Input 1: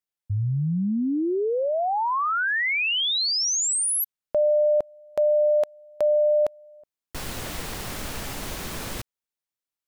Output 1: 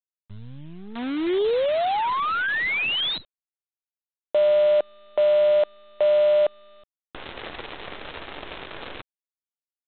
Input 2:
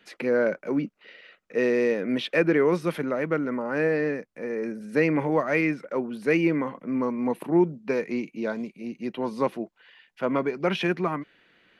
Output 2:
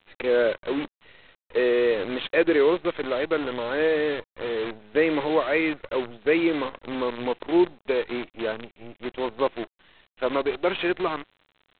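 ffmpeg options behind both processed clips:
ffmpeg -i in.wav -af "lowshelf=frequency=270:width_type=q:width=1.5:gain=-9.5,aresample=8000,acrusher=bits=6:dc=4:mix=0:aa=0.000001,aresample=44100" out.wav

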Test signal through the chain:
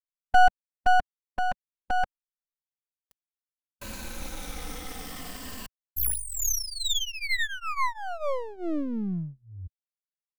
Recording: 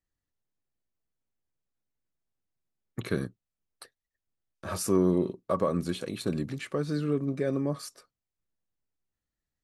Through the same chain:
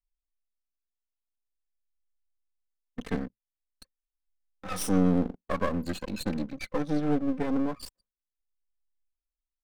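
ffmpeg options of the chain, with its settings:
ffmpeg -i in.wav -filter_complex "[0:a]afftfilt=real='re*pow(10,12/40*sin(2*PI*(1.4*log(max(b,1)*sr/1024/100)/log(2)-(-0.44)*(pts-256)/sr)))':imag='im*pow(10,12/40*sin(2*PI*(1.4*log(max(b,1)*sr/1024/100)/log(2)-(-0.44)*(pts-256)/sr)))':win_size=1024:overlap=0.75,lowshelf=frequency=130:gain=-3.5,aecho=1:1:3.9:0.8,anlmdn=1.58,acrossover=split=210[link_01][link_02];[link_02]aeval=exprs='max(val(0),0)':channel_layout=same[link_03];[link_01][link_03]amix=inputs=2:normalize=0" out.wav

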